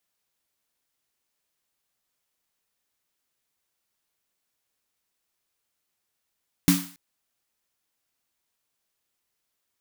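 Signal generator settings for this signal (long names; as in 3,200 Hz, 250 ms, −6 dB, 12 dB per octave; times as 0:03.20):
synth snare length 0.28 s, tones 180 Hz, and 280 Hz, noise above 840 Hz, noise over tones −6 dB, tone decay 0.35 s, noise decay 0.47 s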